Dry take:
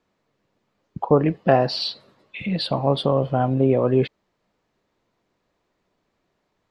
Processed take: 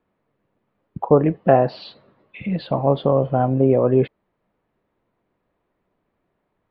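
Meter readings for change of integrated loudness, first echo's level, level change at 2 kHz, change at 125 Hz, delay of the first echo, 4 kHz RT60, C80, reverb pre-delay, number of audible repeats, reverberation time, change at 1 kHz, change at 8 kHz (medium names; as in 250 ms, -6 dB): +2.0 dB, no echo, -2.5 dB, +1.5 dB, no echo, no reverb, no reverb, no reverb, no echo, no reverb, +1.5 dB, no reading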